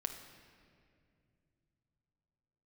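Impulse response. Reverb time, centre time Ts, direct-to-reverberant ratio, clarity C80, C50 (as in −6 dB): 2.4 s, 30 ms, 5.0 dB, 9.0 dB, 7.5 dB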